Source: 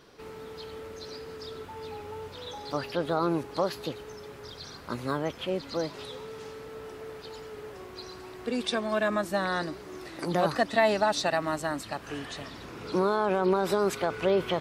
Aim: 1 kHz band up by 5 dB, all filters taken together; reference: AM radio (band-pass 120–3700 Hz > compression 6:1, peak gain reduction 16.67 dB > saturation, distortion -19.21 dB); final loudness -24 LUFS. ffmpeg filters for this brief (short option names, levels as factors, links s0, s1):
-af "highpass=120,lowpass=3700,equalizer=f=1000:t=o:g=6.5,acompressor=threshold=0.0224:ratio=6,asoftclip=threshold=0.0473,volume=5.96"